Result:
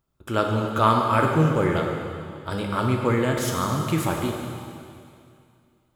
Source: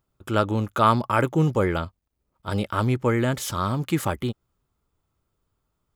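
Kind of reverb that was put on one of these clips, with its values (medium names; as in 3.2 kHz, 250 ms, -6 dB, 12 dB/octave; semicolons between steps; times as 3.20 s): plate-style reverb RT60 2.4 s, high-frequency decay 1×, DRR 0.5 dB; trim -1.5 dB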